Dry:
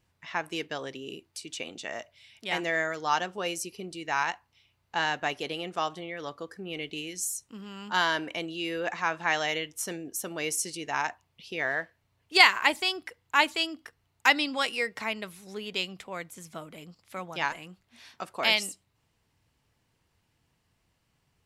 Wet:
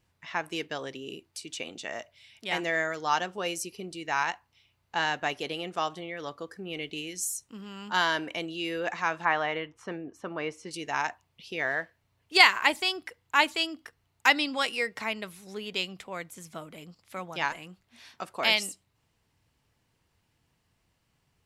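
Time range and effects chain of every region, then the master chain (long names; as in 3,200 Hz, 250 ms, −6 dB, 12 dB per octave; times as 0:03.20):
0:09.25–0:10.71: low-pass filter 2,100 Hz + parametric band 1,100 Hz +7 dB 0.65 octaves
whole clip: no processing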